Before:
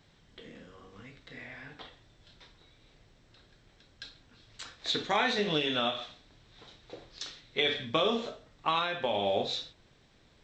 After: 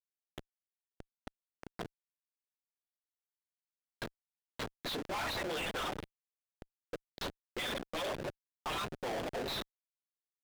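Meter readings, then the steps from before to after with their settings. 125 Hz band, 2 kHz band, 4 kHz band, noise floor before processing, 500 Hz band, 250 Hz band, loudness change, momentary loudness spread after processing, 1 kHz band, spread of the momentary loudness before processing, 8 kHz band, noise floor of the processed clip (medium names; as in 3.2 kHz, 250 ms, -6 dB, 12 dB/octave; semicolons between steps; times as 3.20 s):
-4.0 dB, -6.0 dB, -9.0 dB, -63 dBFS, -8.0 dB, -7.0 dB, -9.0 dB, 19 LU, -7.5 dB, 21 LU, +0.5 dB, under -85 dBFS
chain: harmonic-percussive separation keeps percussive; Schmitt trigger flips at -41.5 dBFS; overdrive pedal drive 36 dB, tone 4 kHz, clips at -34.5 dBFS; trim +2 dB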